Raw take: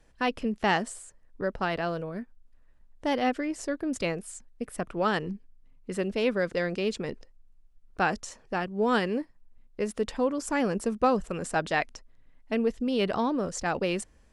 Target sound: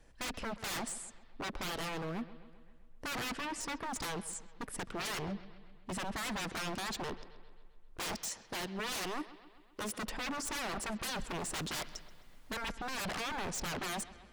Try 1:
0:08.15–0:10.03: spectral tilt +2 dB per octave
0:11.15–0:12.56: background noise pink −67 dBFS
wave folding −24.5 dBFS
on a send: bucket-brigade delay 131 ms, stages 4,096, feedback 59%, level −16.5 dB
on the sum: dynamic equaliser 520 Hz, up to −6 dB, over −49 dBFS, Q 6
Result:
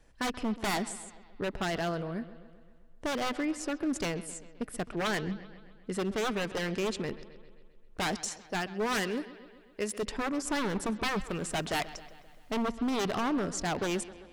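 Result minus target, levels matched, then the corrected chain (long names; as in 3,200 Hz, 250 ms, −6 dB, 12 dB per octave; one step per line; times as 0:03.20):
wave folding: distortion −18 dB
0:08.15–0:10.03: spectral tilt +2 dB per octave
0:11.15–0:12.56: background noise pink −67 dBFS
wave folding −33 dBFS
on a send: bucket-brigade delay 131 ms, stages 4,096, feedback 59%, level −16.5 dB
on the sum: dynamic equaliser 520 Hz, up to −6 dB, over −49 dBFS, Q 6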